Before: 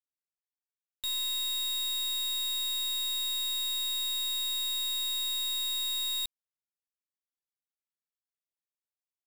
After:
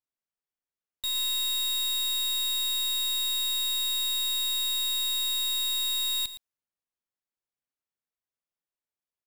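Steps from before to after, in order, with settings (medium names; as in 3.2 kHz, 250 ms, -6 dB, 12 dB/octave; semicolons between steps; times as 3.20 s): delay 115 ms -13 dB; short-mantissa float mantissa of 2-bit; tape noise reduction on one side only decoder only; trim +3.5 dB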